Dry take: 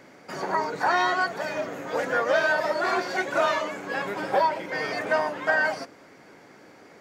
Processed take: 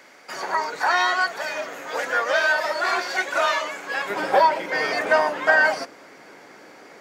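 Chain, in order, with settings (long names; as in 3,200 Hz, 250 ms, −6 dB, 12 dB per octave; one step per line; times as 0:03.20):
high-pass filter 1,300 Hz 6 dB per octave, from 0:04.10 390 Hz
level +6.5 dB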